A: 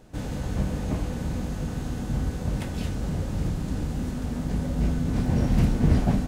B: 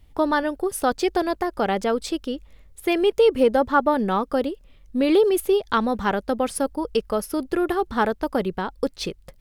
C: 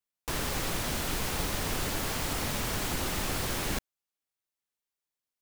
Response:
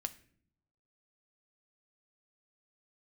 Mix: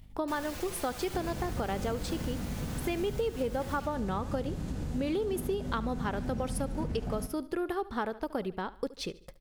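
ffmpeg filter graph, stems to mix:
-filter_complex "[0:a]alimiter=limit=-18.5dB:level=0:latency=1:release=227,adelay=1000,volume=1dB,asplit=2[a][b];[b]volume=-21dB[c];[1:a]agate=range=-33dB:threshold=-42dB:ratio=3:detection=peak,acompressor=mode=upward:threshold=-29dB:ratio=2.5,volume=-8dB,asplit=2[d][e];[e]volume=-19dB[f];[2:a]asoftclip=type=tanh:threshold=-29.5dB,asplit=2[g][h];[h]adelay=4.8,afreqshift=-0.68[i];[g][i]amix=inputs=2:normalize=1,volume=-4dB,asplit=2[j][k];[k]volume=-7dB[l];[a][j]amix=inputs=2:normalize=0,aeval=exprs='val(0)+0.00224*(sin(2*PI*50*n/s)+sin(2*PI*2*50*n/s)/2+sin(2*PI*3*50*n/s)/3+sin(2*PI*4*50*n/s)/4+sin(2*PI*5*50*n/s)/5)':c=same,acompressor=threshold=-35dB:ratio=2.5,volume=0dB[m];[c][f][l]amix=inputs=3:normalize=0,aecho=0:1:72|144|216|288|360|432:1|0.43|0.185|0.0795|0.0342|0.0147[n];[d][m][n]amix=inputs=3:normalize=0,acompressor=threshold=-28dB:ratio=6"

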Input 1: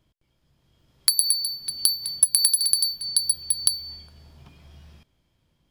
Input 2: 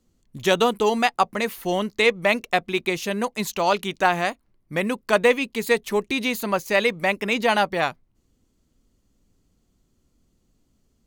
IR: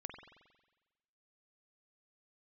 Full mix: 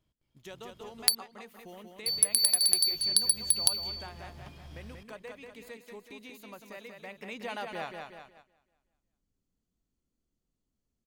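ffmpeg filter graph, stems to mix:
-filter_complex "[0:a]acompressor=threshold=-21dB:ratio=6,volume=0.5dB,asplit=3[a][b][c];[a]atrim=end=1.15,asetpts=PTS-STARTPTS,afade=t=out:st=1.146:d=0.004:c=hsin[d];[b]atrim=start=1.15:end=2.06,asetpts=PTS-STARTPTS,volume=0[e];[c]atrim=start=2.06,asetpts=PTS-STARTPTS,afade=t=in:d=0.004:c=hsin[f];[d][e][f]concat=n=3:v=0:a=1,asplit=2[g][h];[h]volume=-17.5dB[i];[1:a]acompressor=threshold=-34dB:ratio=2,volume=-8dB,afade=t=in:st=6.99:d=0.59:silence=0.354813,asplit=2[j][k];[k]volume=-5dB[l];[2:a]atrim=start_sample=2205[m];[i][m]afir=irnorm=-1:irlink=0[n];[l]aecho=0:1:186|372|558|744|930|1116|1302:1|0.48|0.23|0.111|0.0531|0.0255|0.0122[o];[g][j][n][o]amix=inputs=4:normalize=0,agate=range=-11dB:threshold=-53dB:ratio=16:detection=peak"

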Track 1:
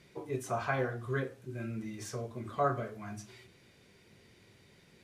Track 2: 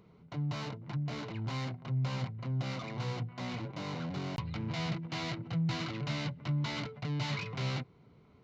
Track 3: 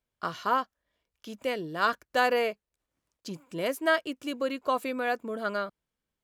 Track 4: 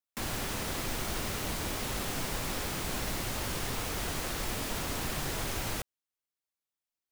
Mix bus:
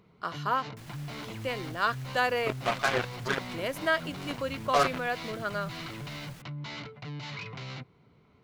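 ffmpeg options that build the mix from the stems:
-filter_complex "[0:a]equalizer=f=67:t=o:w=2.1:g=-12,acrusher=bits=4:mix=0:aa=0.5,adelay=2150,volume=3dB[a];[1:a]alimiter=level_in=8dB:limit=-24dB:level=0:latency=1:release=24,volume=-8dB,volume=-1.5dB[b];[2:a]volume=-5dB,asplit=2[c][d];[3:a]alimiter=level_in=7dB:limit=-24dB:level=0:latency=1:release=17,volume=-7dB,adelay=600,volume=-13.5dB[e];[d]apad=whole_len=372175[f];[b][f]sidechaincompress=threshold=-34dB:ratio=8:attack=16:release=105[g];[a][g][c][e]amix=inputs=4:normalize=0,equalizer=f=2.3k:t=o:w=2.9:g=4.5"

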